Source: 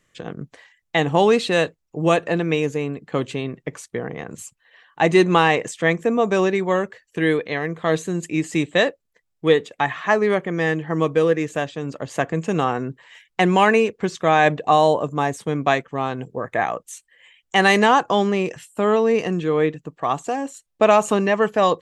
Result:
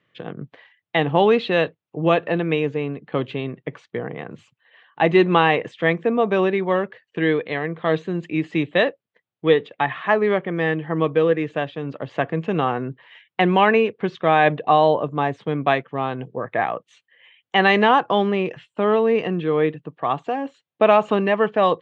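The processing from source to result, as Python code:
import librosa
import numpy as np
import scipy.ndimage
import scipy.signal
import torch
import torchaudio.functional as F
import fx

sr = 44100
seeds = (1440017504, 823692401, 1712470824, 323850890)

y = scipy.signal.sosfilt(scipy.signal.cheby1(3, 1.0, [110.0, 3400.0], 'bandpass', fs=sr, output='sos'), x)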